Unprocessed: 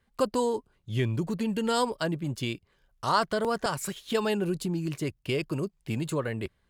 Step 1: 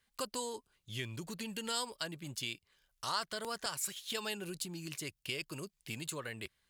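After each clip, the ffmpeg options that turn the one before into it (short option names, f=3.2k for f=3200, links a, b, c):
-af "tiltshelf=f=1.5k:g=-9,acompressor=threshold=-38dB:ratio=1.5,volume=-4dB"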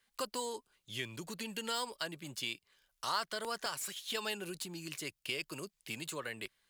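-filter_complex "[0:a]equalizer=f=65:t=o:w=2.5:g=-11.5,acrossover=split=140|3500[a][b][c];[c]asoftclip=type=tanh:threshold=-39dB[d];[a][b][d]amix=inputs=3:normalize=0,volume=2dB"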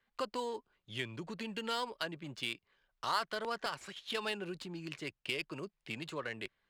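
-af "adynamicsmooth=sensitivity=6:basefreq=2.5k,volume=2dB"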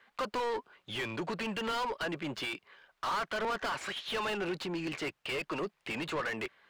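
-filter_complex "[0:a]asplit=2[a][b];[b]highpass=f=720:p=1,volume=31dB,asoftclip=type=tanh:threshold=-19.5dB[c];[a][c]amix=inputs=2:normalize=0,lowpass=f=2k:p=1,volume=-6dB,volume=-5dB"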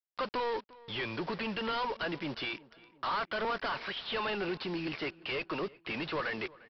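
-filter_complex "[0:a]aresample=11025,acrusher=bits=7:mix=0:aa=0.000001,aresample=44100,asplit=2[a][b];[b]adelay=351,lowpass=f=3k:p=1,volume=-21.5dB,asplit=2[c][d];[d]adelay=351,lowpass=f=3k:p=1,volume=0.49,asplit=2[e][f];[f]adelay=351,lowpass=f=3k:p=1,volume=0.49[g];[a][c][e][g]amix=inputs=4:normalize=0"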